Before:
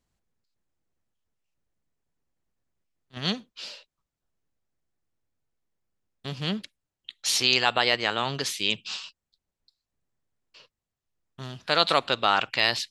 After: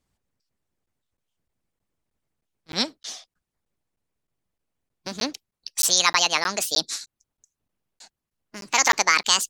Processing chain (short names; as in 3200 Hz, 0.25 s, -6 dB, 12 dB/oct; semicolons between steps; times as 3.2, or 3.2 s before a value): speed glide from 109% -> 163%; harmonic-percussive split percussive +8 dB; crackling interface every 0.31 s, samples 512, zero, from 0.86; gain -2.5 dB